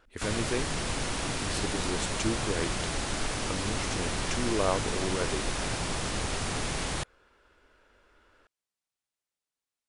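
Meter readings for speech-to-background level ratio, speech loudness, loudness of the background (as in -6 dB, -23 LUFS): -3.0 dB, -34.5 LUFS, -31.5 LUFS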